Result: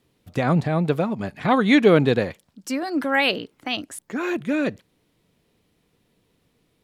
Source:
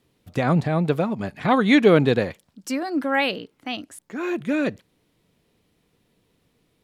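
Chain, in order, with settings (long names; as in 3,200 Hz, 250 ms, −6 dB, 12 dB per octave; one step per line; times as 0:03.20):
0:02.83–0:04.37: harmonic and percussive parts rebalanced percussive +6 dB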